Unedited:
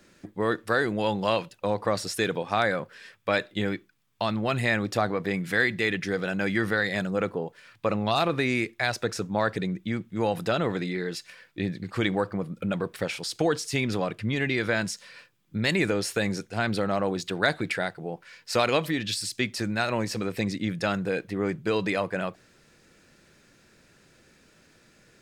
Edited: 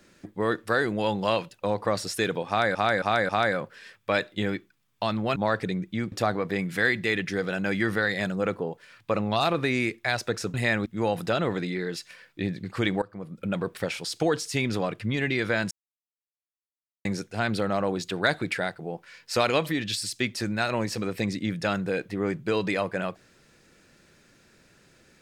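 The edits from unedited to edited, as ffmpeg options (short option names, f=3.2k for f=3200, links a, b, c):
-filter_complex "[0:a]asplit=11[a][b][c][d][e][f][g][h][i][j][k];[a]atrim=end=2.752[l];[b]atrim=start=2.478:end=2.752[m];[c]atrim=start=2.478:end=2.752[n];[d]atrim=start=2.478:end=4.552[o];[e]atrim=start=9.288:end=10.052[p];[f]atrim=start=4.868:end=9.292[q];[g]atrim=start=4.548:end=4.872[r];[h]atrim=start=10.048:end=12.21,asetpts=PTS-STARTPTS,afade=t=out:st=2.158:d=0.004:c=hsin:silence=0.105925[s];[i]atrim=start=12.21:end=14.9,asetpts=PTS-STARTPTS,afade=t=in:d=0.53:silence=0.105925,afade=t=out:st=2.686:d=0.004:c=hsin[t];[j]atrim=start=14.9:end=16.24,asetpts=PTS-STARTPTS,volume=0[u];[k]atrim=start=16.24,asetpts=PTS-STARTPTS,afade=t=in:d=0.004:c=hsin[v];[l][m]acrossfade=d=0.004:c1=hsin:c2=hsin[w];[w][n]acrossfade=d=0.004:c1=hsin:c2=hsin[x];[x][o]acrossfade=d=0.004:c1=hsin:c2=hsin[y];[y][p]acrossfade=d=0.004:c1=hsin:c2=hsin[z];[z][q]acrossfade=d=0.004:c1=hsin:c2=hsin[aa];[aa][r]acrossfade=d=0.004:c1=hsin:c2=hsin[ab];[s][t][u][v]concat=n=4:v=0:a=1[ac];[ab][ac]acrossfade=d=0.004:c1=hsin:c2=hsin"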